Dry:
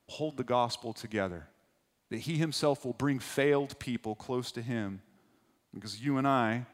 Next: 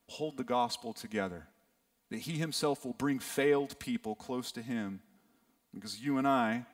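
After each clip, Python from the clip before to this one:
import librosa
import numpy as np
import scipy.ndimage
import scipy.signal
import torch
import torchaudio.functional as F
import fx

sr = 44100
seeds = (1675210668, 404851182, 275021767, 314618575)

y = fx.high_shelf(x, sr, hz=11000.0, db=10.5)
y = y + 0.59 * np.pad(y, (int(4.3 * sr / 1000.0), 0))[:len(y)]
y = y * 10.0 ** (-3.5 / 20.0)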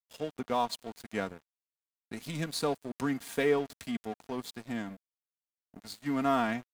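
y = np.sign(x) * np.maximum(np.abs(x) - 10.0 ** (-45.5 / 20.0), 0.0)
y = y * 10.0 ** (2.0 / 20.0)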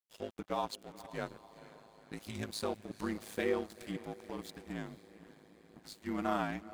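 y = fx.echo_diffused(x, sr, ms=484, feedback_pct=57, wet_db=-15.5)
y = y * np.sin(2.0 * np.pi * 53.0 * np.arange(len(y)) / sr)
y = y * 10.0 ** (-3.0 / 20.0)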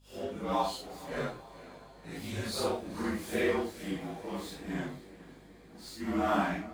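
y = fx.phase_scramble(x, sr, seeds[0], window_ms=200)
y = fx.add_hum(y, sr, base_hz=50, snr_db=27)
y = y * 10.0 ** (5.5 / 20.0)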